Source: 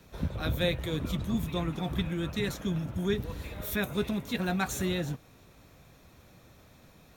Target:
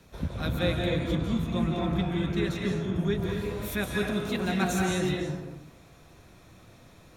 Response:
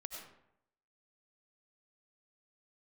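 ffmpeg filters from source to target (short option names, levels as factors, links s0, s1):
-filter_complex "[0:a]asettb=1/sr,asplit=3[s0][s1][s2];[s0]atrim=end=0.594[s3];[s1]atrim=start=0.59:end=3.19,asetpts=PTS-STARTPTS,afade=t=in:d=0.004:c=qsin,afade=t=out:st=2.596:d=0.004:c=qsin,highshelf=f=5600:g=-9[s4];[s2]atrim=start=3.186[s5];[s3][s4]acrossfade=d=0.004:c1=hsin:c2=qsin[s6];[s6][s5]acrossfade=d=0.004:c1=qsin:c2=hsin[s7];[1:a]atrim=start_sample=2205,afade=t=out:st=0.35:d=0.01,atrim=end_sample=15876,asetrate=23373,aresample=44100[s8];[s7][s8]afir=irnorm=-1:irlink=0,volume=1.26"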